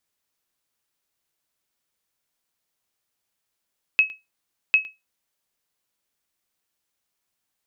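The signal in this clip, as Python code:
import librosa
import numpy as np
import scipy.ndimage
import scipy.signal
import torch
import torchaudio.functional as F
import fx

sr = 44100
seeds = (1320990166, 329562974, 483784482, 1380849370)

y = fx.sonar_ping(sr, hz=2570.0, decay_s=0.2, every_s=0.75, pings=2, echo_s=0.11, echo_db=-21.0, level_db=-8.5)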